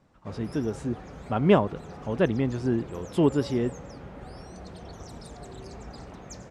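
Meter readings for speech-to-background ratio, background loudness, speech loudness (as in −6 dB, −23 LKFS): 16.0 dB, −43.0 LKFS, −27.0 LKFS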